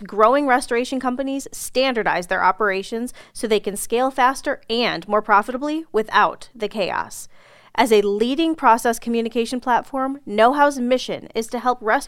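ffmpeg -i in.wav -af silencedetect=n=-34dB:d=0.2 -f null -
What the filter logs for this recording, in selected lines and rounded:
silence_start: 7.25
silence_end: 7.75 | silence_duration: 0.50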